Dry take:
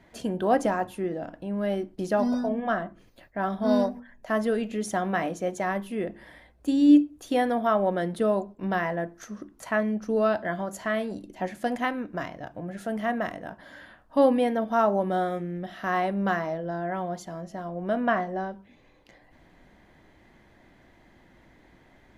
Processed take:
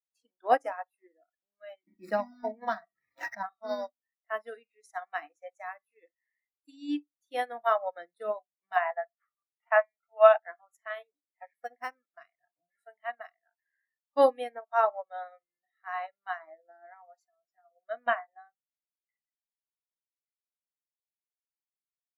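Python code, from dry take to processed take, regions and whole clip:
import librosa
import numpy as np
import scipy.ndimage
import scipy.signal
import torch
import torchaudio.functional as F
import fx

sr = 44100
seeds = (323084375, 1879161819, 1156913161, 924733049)

y = fx.chain(x, sr, fx.median_filter(points=15),
    fx.small_body(hz=(210.0, 950.0, 1900.0), ring_ms=85, db=12),
    fx.pre_swell(db_per_s=21.0), at=(1.87, 3.43))
y = fx.chain(y, sr, fx.lowpass(hz=6400.0, slope=24),
    fx.resample_bad(factor=6, down='none', up='filtered'),
    fx.low_shelf_res(hz=510.0, db=-11.5, q=3.0), at=(8.76, 10.4))
y = fx.chain(y, sr, fx.peak_eq(hz=4400.0, db=-12.0, octaves=0.37),
    fx.resample_linear(factor=6), at=(11.61, 12.04))
y = fx.chain(y, sr, fx.highpass(hz=190.0, slope=6),
    fx.high_shelf(hz=3800.0, db=-5.0), at=(14.58, 17.13))
y = fx.noise_reduce_blind(y, sr, reduce_db=25)
y = scipy.signal.sosfilt(scipy.signal.butter(2, 580.0, 'highpass', fs=sr, output='sos'), y)
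y = fx.upward_expand(y, sr, threshold_db=-44.0, expansion=2.5)
y = y * 10.0 ** (6.5 / 20.0)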